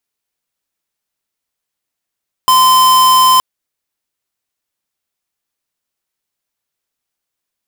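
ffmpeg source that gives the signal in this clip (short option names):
-f lavfi -i "aevalsrc='0.398*(2*lt(mod(1030*t,1),0.5)-1)':d=0.92:s=44100"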